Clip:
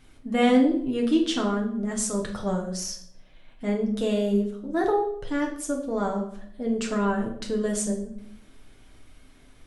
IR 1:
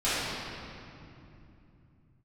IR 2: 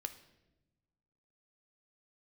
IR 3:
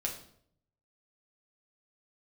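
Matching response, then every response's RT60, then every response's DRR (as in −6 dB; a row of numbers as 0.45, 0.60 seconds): 3; 2.8, 1.0, 0.65 seconds; −15.0, 8.0, −0.5 decibels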